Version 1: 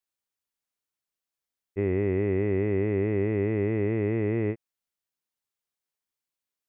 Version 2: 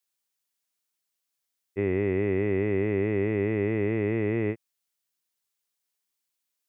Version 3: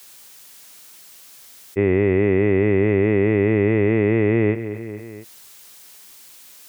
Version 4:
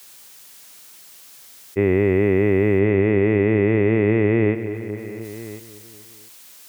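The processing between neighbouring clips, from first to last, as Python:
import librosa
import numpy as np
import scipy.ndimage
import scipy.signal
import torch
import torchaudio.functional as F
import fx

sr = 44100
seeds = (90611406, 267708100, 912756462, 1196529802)

y1 = scipy.signal.sosfilt(scipy.signal.butter(2, 91.0, 'highpass', fs=sr, output='sos'), x)
y1 = fx.high_shelf(y1, sr, hz=2300.0, db=8.0)
y2 = fx.echo_feedback(y1, sr, ms=229, feedback_pct=44, wet_db=-22.5)
y2 = fx.env_flatten(y2, sr, amount_pct=50)
y2 = y2 * 10.0 ** (8.0 / 20.0)
y3 = y2 + 10.0 ** (-16.5 / 20.0) * np.pad(y2, (int(1046 * sr / 1000.0), 0))[:len(y2)]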